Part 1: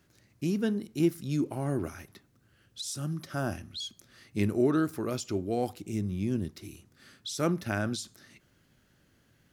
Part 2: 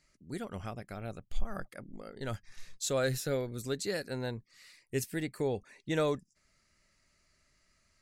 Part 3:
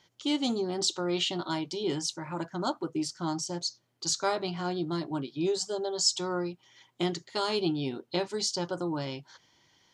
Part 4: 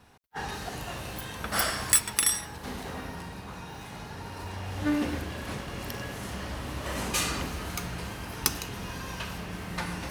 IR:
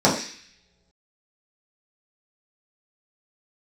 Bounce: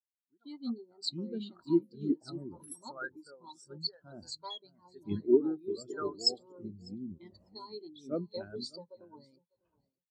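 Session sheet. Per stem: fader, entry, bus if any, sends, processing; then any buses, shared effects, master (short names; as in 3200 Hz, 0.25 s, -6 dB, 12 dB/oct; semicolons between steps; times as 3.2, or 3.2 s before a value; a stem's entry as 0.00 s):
-1.5 dB, 0.70 s, no send, echo send -9.5 dB, bell 3100 Hz +8 dB 0.3 oct
-5.0 dB, 0.00 s, no send, echo send -19 dB, Wiener smoothing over 15 samples; HPF 220 Hz 6 dB/oct; band shelf 1100 Hz +11.5 dB 1.3 oct
-3.0 dB, 0.20 s, no send, echo send -11 dB, ripple EQ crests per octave 0.96, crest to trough 10 dB
-10.5 dB, 0.45 s, no send, no echo send, bell 660 Hz +8.5 dB 1.3 oct; dB-linear tremolo 0.86 Hz, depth 33 dB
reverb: off
echo: feedback echo 0.599 s, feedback 29%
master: harmonic-percussive split harmonic -7 dB; high shelf 8200 Hz +8.5 dB; spectral expander 2.5:1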